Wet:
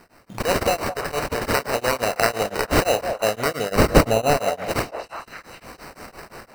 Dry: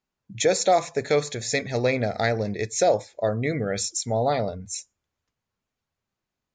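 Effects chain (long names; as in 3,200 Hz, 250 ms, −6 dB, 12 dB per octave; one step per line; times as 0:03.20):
compressor on every frequency bin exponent 0.6
in parallel at +1 dB: downward compressor, threshold −29 dBFS, peak gain reduction 15.5 dB
on the sum: spectral tilt +3 dB per octave
automatic gain control gain up to 13 dB
decimation without filtering 13×
0:03.70–0:04.37: low-shelf EQ 390 Hz +10 dB
on a send: echo through a band-pass that steps 208 ms, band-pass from 660 Hz, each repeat 0.7 octaves, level −6.5 dB
on the sum: tremolo along a rectified sine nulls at 5.8 Hz
level −2 dB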